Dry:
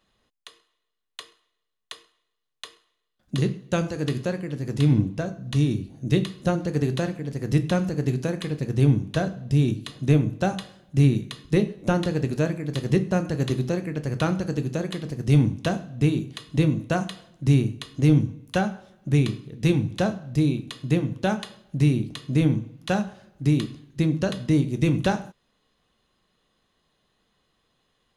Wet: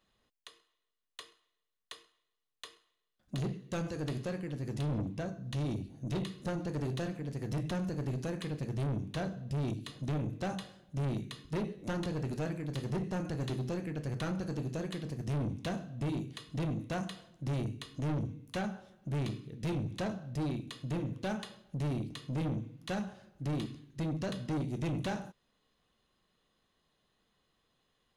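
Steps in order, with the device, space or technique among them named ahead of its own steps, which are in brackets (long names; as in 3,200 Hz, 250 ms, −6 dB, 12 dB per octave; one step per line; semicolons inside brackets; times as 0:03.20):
saturation between pre-emphasis and de-emphasis (high-shelf EQ 7,400 Hz +10.5 dB; soft clipping −24.5 dBFS, distortion −6 dB; high-shelf EQ 7,400 Hz −10.5 dB)
level −6 dB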